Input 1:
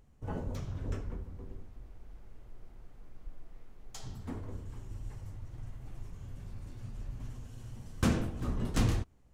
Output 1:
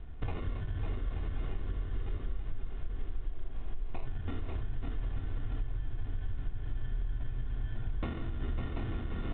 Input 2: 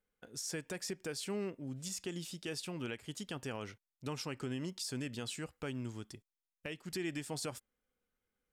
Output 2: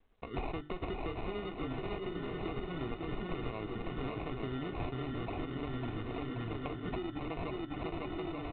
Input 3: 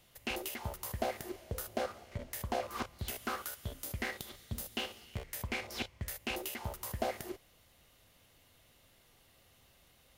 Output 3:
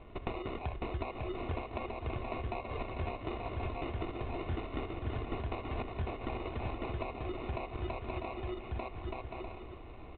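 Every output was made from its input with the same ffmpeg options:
-filter_complex "[0:a]acrossover=split=150[a][b];[a]asoftclip=type=hard:threshold=-30dB[c];[c][b]amix=inputs=2:normalize=0,bandreject=f=50:t=h:w=6,bandreject=f=100:t=h:w=6,bandreject=f=150:t=h:w=6,bandreject=f=200:t=h:w=6,bandreject=f=250:t=h:w=6,bandreject=f=300:t=h:w=6,bandreject=f=350:t=h:w=6,bandreject=f=400:t=h:w=6,asplit=2[d][e];[e]adelay=1224,volume=-10dB,highshelf=f=4k:g=-27.6[f];[d][f]amix=inputs=2:normalize=0,acrusher=samples=27:mix=1:aa=0.000001,aecho=1:1:2.8:0.4,asplit=2[g][h];[h]aecho=0:1:550|880|1078|1197|1268:0.631|0.398|0.251|0.158|0.1[i];[g][i]amix=inputs=2:normalize=0,acompressor=threshold=-47dB:ratio=16,lowshelf=f=92:g=8,volume=11.5dB" -ar 8000 -c:a adpcm_g726 -b:a 40k

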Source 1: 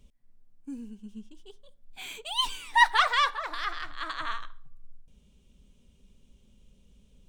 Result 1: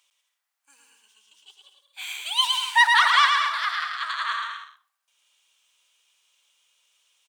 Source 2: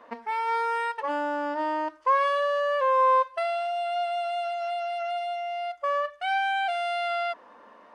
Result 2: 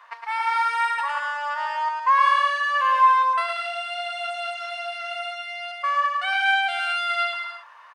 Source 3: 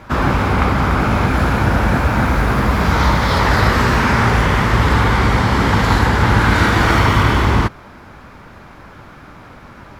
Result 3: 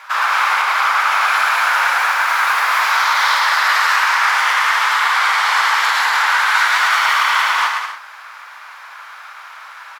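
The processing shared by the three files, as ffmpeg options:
-filter_complex "[0:a]highpass=f=1k:w=0.5412,highpass=f=1k:w=1.3066,alimiter=limit=-13.5dB:level=0:latency=1:release=94,asplit=2[a][b];[b]aecho=0:1:110|187|240.9|278.6|305:0.631|0.398|0.251|0.158|0.1[c];[a][c]amix=inputs=2:normalize=0,volume=6dB"

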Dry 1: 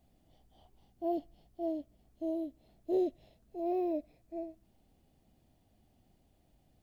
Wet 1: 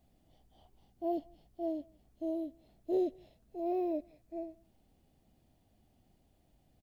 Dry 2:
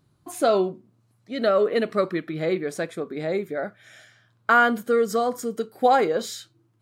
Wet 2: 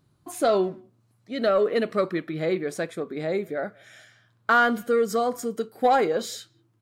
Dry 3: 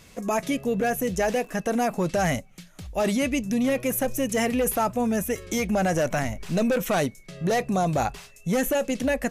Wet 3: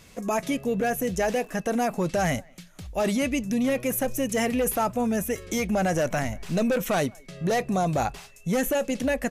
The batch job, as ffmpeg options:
-filter_complex "[0:a]acontrast=76,asplit=2[a][b];[b]adelay=180,highpass=300,lowpass=3.4k,asoftclip=type=hard:threshold=-13dB,volume=-27dB[c];[a][c]amix=inputs=2:normalize=0,volume=-7.5dB"

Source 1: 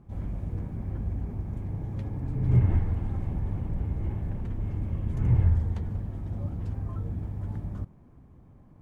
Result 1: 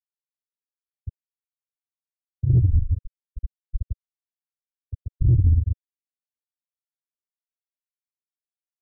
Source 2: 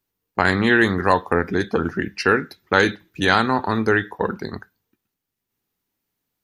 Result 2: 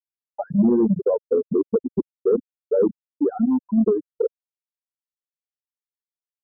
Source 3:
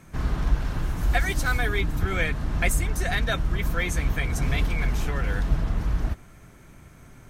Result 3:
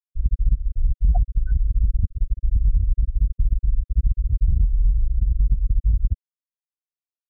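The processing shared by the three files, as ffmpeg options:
-filter_complex "[0:a]afftfilt=real='re*gte(hypot(re,im),0.631)':imag='im*gte(hypot(re,im),0.631)':win_size=1024:overlap=0.75,anlmdn=0.0158,lowshelf=f=770:t=q:w=3:g=13,acrossover=split=200[a][b];[b]acompressor=threshold=-29dB:ratio=2[c];[a][c]amix=inputs=2:normalize=0,alimiter=limit=-7dB:level=0:latency=1:release=252,acontrast=73,asuperstop=centerf=2400:order=8:qfactor=0.74,volume=-7.5dB"

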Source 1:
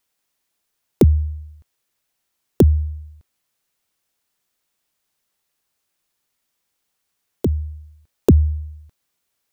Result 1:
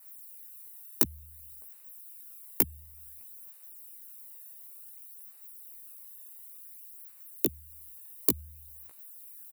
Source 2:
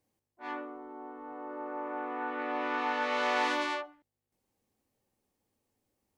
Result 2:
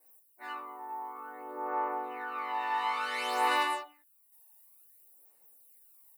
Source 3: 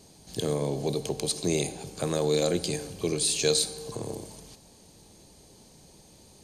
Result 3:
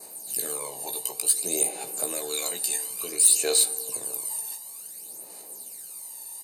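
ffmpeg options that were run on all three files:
-filter_complex "[0:a]highpass=580,adynamicequalizer=threshold=0.00316:dfrequency=3100:dqfactor=3.2:tfrequency=3100:tqfactor=3.2:attack=5:release=100:ratio=0.375:range=2.5:mode=boostabove:tftype=bell,asplit=2[a][b];[b]acompressor=threshold=-45dB:ratio=6,volume=3dB[c];[a][c]amix=inputs=2:normalize=0,aexciter=amount=10.7:drive=5.3:freq=8.6k,aphaser=in_gain=1:out_gain=1:delay=1.1:decay=0.62:speed=0.56:type=sinusoidal,asoftclip=type=tanh:threshold=-5.5dB,asuperstop=centerf=3300:order=12:qfactor=7.9,asplit=2[d][e];[e]adelay=16,volume=-5dB[f];[d][f]amix=inputs=2:normalize=0,volume=-5.5dB"

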